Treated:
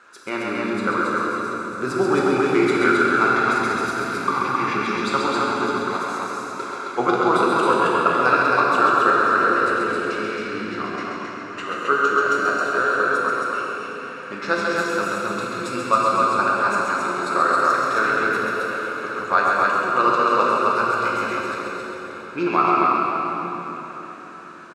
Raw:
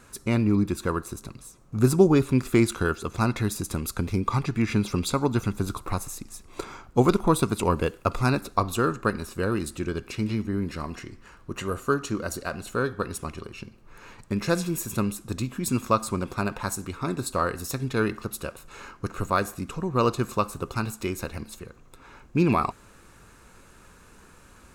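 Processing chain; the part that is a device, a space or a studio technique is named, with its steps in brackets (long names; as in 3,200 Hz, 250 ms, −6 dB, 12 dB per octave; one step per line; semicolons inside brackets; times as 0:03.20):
station announcement (band-pass filter 420–4,700 Hz; parametric band 1,400 Hz +10 dB 0.44 octaves; loudspeakers that aren't time-aligned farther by 46 metres −5 dB, 92 metres −3 dB; convolution reverb RT60 4.3 s, pre-delay 4 ms, DRR −3.5 dB)
0:05.98–0:07.00: low-shelf EQ 120 Hz −11 dB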